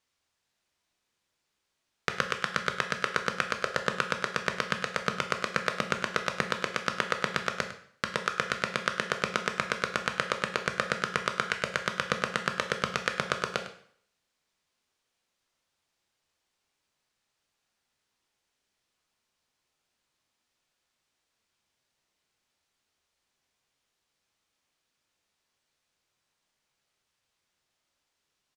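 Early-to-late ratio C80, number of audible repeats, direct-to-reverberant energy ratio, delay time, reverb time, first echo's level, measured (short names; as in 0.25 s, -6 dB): 11.5 dB, 1, 5.0 dB, 0.103 s, 0.60 s, -14.5 dB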